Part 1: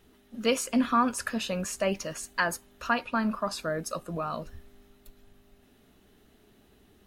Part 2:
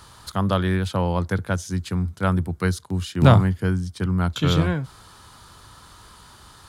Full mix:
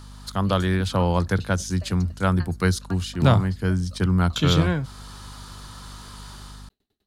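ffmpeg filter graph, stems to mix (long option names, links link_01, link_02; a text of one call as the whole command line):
ffmpeg -i stem1.wav -i stem2.wav -filter_complex "[0:a]equalizer=frequency=4200:width=3.8:gain=13.5,aeval=exprs='val(0)*pow(10,-25*if(lt(mod(10*n/s,1),2*abs(10)/1000),1-mod(10*n/s,1)/(2*abs(10)/1000),(mod(10*n/s,1)-2*abs(10)/1000)/(1-2*abs(10)/1000))/20)':channel_layout=same,volume=-10.5dB[link_01];[1:a]equalizer=frequency=5100:width=1:gain=4,dynaudnorm=framelen=120:gausssize=5:maxgain=7.5dB,aeval=exprs='val(0)+0.0158*(sin(2*PI*50*n/s)+sin(2*PI*2*50*n/s)/2+sin(2*PI*3*50*n/s)/3+sin(2*PI*4*50*n/s)/4+sin(2*PI*5*50*n/s)/5)':channel_layout=same,volume=-4.5dB[link_02];[link_01][link_02]amix=inputs=2:normalize=0" out.wav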